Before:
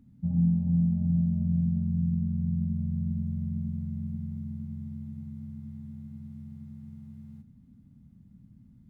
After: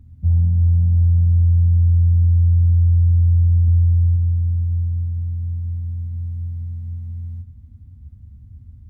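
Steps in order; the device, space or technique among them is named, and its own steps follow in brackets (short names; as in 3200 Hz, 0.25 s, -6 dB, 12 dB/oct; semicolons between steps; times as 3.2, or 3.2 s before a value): car stereo with a boomy subwoofer (resonant low shelf 120 Hz +12.5 dB, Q 3; limiter -12.5 dBFS, peak gain reduction 3.5 dB); dynamic EQ 220 Hz, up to -6 dB, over -39 dBFS, Q 1.2; 3.63–4.16 doubler 49 ms -8 dB; gain +3.5 dB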